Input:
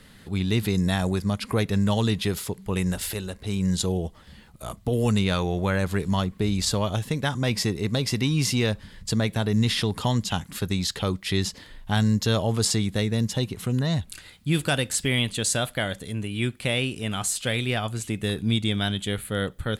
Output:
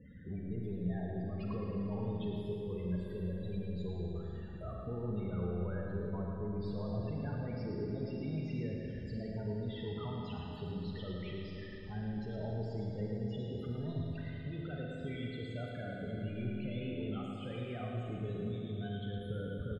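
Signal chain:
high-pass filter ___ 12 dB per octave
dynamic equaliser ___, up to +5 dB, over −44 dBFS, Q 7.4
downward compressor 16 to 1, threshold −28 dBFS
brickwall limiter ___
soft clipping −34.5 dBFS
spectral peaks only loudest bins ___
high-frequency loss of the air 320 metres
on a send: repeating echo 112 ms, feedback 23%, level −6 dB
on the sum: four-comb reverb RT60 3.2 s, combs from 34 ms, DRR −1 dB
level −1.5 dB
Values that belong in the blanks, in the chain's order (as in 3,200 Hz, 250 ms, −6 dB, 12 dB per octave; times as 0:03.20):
43 Hz, 420 Hz, −27 dBFS, 16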